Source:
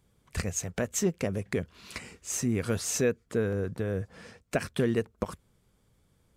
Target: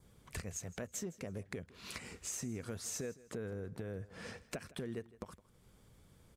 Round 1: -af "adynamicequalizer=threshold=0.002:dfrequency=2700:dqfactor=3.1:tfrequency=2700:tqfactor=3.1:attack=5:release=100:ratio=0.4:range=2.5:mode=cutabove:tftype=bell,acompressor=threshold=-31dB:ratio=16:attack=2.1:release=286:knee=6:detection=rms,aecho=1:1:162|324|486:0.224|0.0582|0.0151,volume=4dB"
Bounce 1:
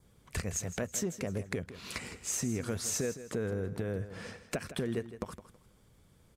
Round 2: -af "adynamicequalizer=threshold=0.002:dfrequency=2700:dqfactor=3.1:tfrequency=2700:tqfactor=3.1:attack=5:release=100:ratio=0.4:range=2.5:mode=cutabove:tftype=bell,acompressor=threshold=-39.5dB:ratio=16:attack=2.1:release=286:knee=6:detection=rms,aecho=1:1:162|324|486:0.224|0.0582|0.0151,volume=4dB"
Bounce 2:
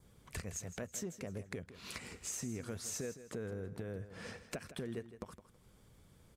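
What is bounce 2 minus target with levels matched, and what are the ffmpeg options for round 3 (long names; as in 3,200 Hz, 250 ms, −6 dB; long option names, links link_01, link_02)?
echo-to-direct +6.5 dB
-af "adynamicequalizer=threshold=0.002:dfrequency=2700:dqfactor=3.1:tfrequency=2700:tqfactor=3.1:attack=5:release=100:ratio=0.4:range=2.5:mode=cutabove:tftype=bell,acompressor=threshold=-39.5dB:ratio=16:attack=2.1:release=286:knee=6:detection=rms,aecho=1:1:162|324:0.106|0.0275,volume=4dB"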